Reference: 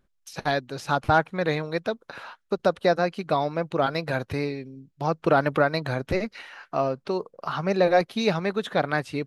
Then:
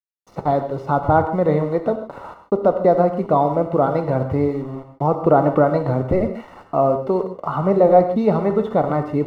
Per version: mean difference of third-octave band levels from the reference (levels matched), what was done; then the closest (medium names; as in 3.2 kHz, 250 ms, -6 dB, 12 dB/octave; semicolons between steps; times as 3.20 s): 7.5 dB: in parallel at -2 dB: peak limiter -17 dBFS, peak gain reduction 10 dB; on the sum: word length cut 6-bit, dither none; Savitzky-Golay filter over 65 samples; gated-style reverb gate 170 ms flat, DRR 6.5 dB; trim +3.5 dB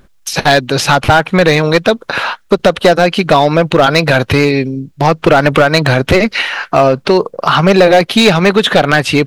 5.0 dB: compression 3:1, threshold -22 dBFS, peak gain reduction 7 dB; dynamic bell 2.9 kHz, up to +6 dB, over -48 dBFS, Q 1.2; hard clipper -20.5 dBFS, distortion -12 dB; loudness maximiser +24 dB; trim -1 dB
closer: second